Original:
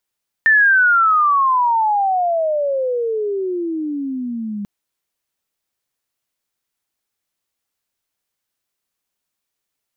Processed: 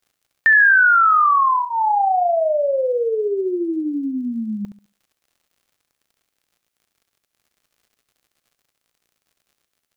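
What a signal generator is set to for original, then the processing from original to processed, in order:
chirp logarithmic 1800 Hz -> 200 Hz -8.5 dBFS -> -22.5 dBFS 4.19 s
crackle 85/s -49 dBFS; notch 950 Hz, Q 9.2; flutter echo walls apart 11.8 m, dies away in 0.36 s

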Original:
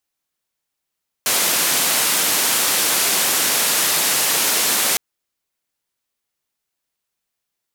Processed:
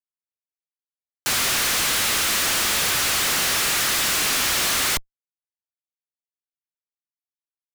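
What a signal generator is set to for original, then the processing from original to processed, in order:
noise band 210–14000 Hz, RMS -18 dBFS 3.71 s
steep high-pass 1100 Hz 96 dB/oct; Schmitt trigger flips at -22.5 dBFS

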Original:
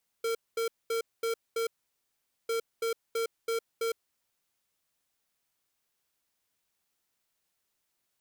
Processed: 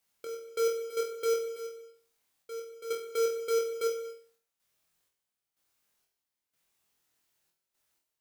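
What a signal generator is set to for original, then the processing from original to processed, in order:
beep pattern square 457 Hz, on 0.11 s, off 0.22 s, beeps 5, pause 0.82 s, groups 2, -30 dBFS
step gate "x.x.xx..xx..xxx" 62 bpm -12 dB; on a send: flutter echo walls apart 4.1 m, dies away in 0.42 s; on the sum: non-linear reverb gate 0.27 s flat, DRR 11.5 dB

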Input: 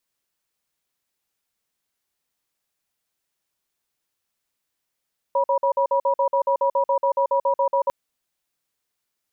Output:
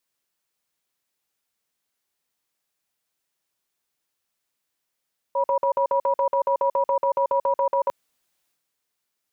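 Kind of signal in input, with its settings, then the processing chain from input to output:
cadence 551 Hz, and 966 Hz, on 0.09 s, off 0.05 s, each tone -19.5 dBFS 2.55 s
low shelf 100 Hz -6 dB; transient shaper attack -4 dB, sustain +6 dB

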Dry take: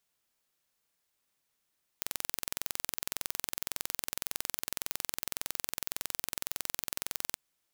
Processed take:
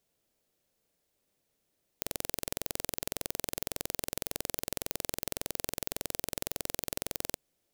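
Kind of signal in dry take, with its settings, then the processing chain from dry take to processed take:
pulse train 21.8/s, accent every 0, -5.5 dBFS 5.35 s
resonant low shelf 770 Hz +8.5 dB, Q 1.5

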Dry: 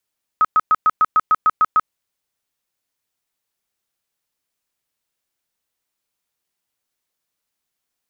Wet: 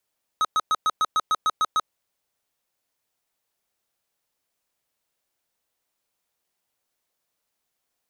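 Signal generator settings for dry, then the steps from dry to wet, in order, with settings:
tone bursts 1270 Hz, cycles 47, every 0.15 s, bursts 10, -10 dBFS
bell 640 Hz +5 dB 1.3 oct; soft clip -19.5 dBFS

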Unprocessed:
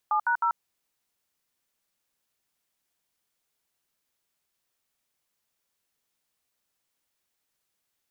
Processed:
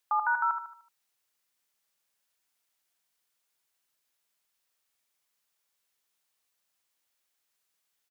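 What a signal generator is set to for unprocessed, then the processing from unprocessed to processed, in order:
DTMF "7#0", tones 88 ms, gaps 68 ms, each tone -24 dBFS
low shelf 480 Hz -9 dB; on a send: feedback echo 75 ms, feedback 41%, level -7.5 dB

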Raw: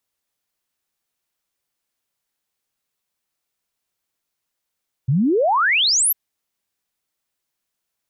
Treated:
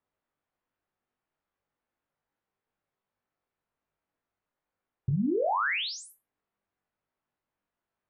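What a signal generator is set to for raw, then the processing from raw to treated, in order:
log sweep 120 Hz -> 13000 Hz 1.05 s -14 dBFS
LPF 1500 Hz 12 dB/oct; compressor 12:1, threshold -27 dBFS; on a send: flutter echo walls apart 3.5 m, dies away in 0.22 s

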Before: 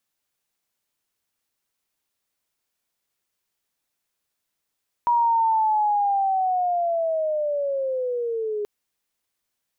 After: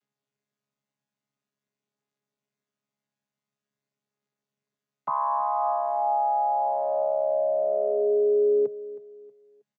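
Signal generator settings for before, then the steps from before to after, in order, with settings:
chirp linear 960 Hz -> 410 Hz -16 dBFS -> -24 dBFS 3.58 s
chord vocoder bare fifth, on C#3; limiter -17.5 dBFS; feedback echo 0.318 s, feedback 34%, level -17 dB

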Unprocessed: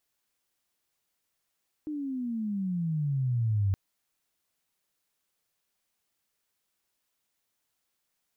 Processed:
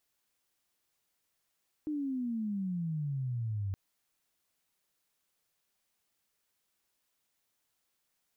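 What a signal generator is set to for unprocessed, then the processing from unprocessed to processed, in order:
gliding synth tone sine, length 1.87 s, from 309 Hz, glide -20.5 st, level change +9 dB, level -22.5 dB
limiter -31.5 dBFS

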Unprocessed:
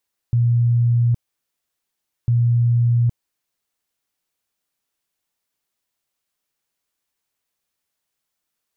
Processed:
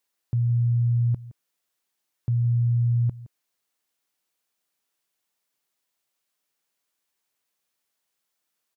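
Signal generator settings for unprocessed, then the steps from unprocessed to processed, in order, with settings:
tone bursts 119 Hz, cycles 97, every 1.95 s, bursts 2, -13 dBFS
HPF 200 Hz 6 dB/oct; echo 0.167 s -18 dB

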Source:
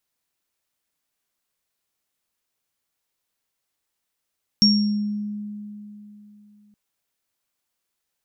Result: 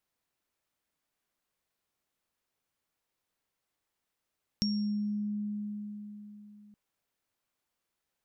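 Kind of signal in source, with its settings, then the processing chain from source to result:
sine partials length 2.12 s, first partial 208 Hz, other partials 5540 Hz, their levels 3.5 dB, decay 3.28 s, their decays 0.60 s, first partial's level -14.5 dB
high shelf 2800 Hz -8 dB; compressor 3:1, threshold -33 dBFS

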